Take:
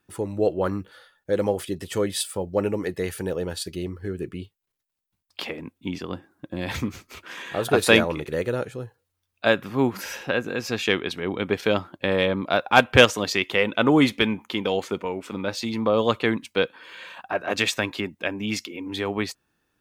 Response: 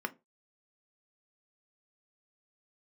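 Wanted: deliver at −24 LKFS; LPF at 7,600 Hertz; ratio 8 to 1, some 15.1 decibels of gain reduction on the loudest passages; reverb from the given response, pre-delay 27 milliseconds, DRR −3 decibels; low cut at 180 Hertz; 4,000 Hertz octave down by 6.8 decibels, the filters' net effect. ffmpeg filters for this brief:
-filter_complex "[0:a]highpass=180,lowpass=7600,equalizer=frequency=4000:width_type=o:gain=-9,acompressor=threshold=-25dB:ratio=8,asplit=2[link_01][link_02];[1:a]atrim=start_sample=2205,adelay=27[link_03];[link_02][link_03]afir=irnorm=-1:irlink=0,volume=-1dB[link_04];[link_01][link_04]amix=inputs=2:normalize=0,volume=3.5dB"

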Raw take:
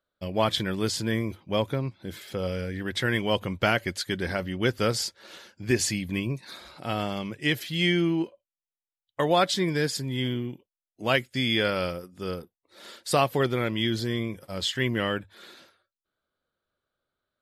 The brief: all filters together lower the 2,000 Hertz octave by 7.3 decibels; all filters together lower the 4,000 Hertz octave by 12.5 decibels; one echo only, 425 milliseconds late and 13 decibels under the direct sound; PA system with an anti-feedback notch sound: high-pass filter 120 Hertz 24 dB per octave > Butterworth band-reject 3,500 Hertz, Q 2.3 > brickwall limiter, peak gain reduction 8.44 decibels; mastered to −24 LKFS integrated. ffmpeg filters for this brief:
ffmpeg -i in.wav -af "highpass=frequency=120:width=0.5412,highpass=frequency=120:width=1.3066,asuperstop=centerf=3500:order=8:qfactor=2.3,equalizer=frequency=2000:width_type=o:gain=-8,equalizer=frequency=4000:width_type=o:gain=-5,aecho=1:1:425:0.224,volume=7.5dB,alimiter=limit=-11dB:level=0:latency=1" out.wav

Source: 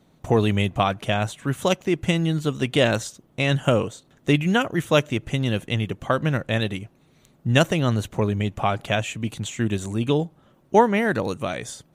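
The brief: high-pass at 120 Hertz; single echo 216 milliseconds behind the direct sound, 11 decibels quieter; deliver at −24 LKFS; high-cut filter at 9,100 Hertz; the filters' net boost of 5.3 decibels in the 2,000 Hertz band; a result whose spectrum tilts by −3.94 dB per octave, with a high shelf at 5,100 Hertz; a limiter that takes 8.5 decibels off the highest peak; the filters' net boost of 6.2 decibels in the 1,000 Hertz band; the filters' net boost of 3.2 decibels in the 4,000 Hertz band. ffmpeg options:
ffmpeg -i in.wav -af "highpass=120,lowpass=9100,equalizer=frequency=1000:width_type=o:gain=7,equalizer=frequency=2000:width_type=o:gain=4.5,equalizer=frequency=4000:width_type=o:gain=3.5,highshelf=frequency=5100:gain=-4.5,alimiter=limit=-7.5dB:level=0:latency=1,aecho=1:1:216:0.282,volume=-1dB" out.wav

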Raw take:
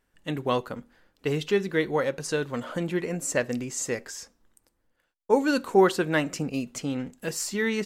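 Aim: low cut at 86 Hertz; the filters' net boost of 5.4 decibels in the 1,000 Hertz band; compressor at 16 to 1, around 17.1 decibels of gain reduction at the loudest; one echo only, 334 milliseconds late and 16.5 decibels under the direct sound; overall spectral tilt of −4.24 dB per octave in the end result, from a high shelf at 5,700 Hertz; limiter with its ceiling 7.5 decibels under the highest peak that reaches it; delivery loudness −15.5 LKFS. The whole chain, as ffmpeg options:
ffmpeg -i in.wav -af "highpass=86,equalizer=frequency=1000:width_type=o:gain=7,highshelf=frequency=5700:gain=-6.5,acompressor=threshold=-28dB:ratio=16,alimiter=limit=-23.5dB:level=0:latency=1,aecho=1:1:334:0.15,volume=20dB" out.wav

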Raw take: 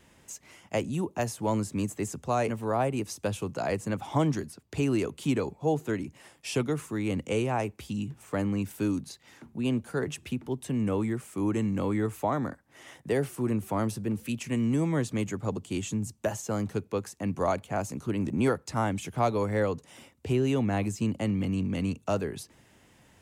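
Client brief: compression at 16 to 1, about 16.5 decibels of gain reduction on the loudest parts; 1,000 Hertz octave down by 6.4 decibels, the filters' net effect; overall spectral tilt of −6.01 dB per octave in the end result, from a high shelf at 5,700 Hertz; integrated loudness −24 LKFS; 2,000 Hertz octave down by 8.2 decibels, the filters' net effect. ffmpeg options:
ffmpeg -i in.wav -af "equalizer=frequency=1000:width_type=o:gain=-7.5,equalizer=frequency=2000:width_type=o:gain=-8,highshelf=frequency=5700:gain=-4,acompressor=threshold=-39dB:ratio=16,volume=20.5dB" out.wav

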